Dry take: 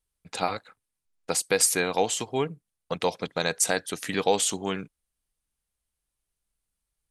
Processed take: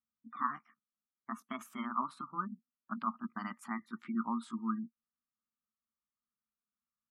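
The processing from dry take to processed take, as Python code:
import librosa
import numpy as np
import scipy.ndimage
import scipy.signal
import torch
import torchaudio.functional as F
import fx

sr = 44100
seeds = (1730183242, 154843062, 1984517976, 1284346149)

y = fx.pitch_glide(x, sr, semitones=6.5, runs='ending unshifted')
y = fx.double_bandpass(y, sr, hz=530.0, octaves=2.4)
y = fx.spec_gate(y, sr, threshold_db=-25, keep='strong')
y = y * 10.0 ** (2.5 / 20.0)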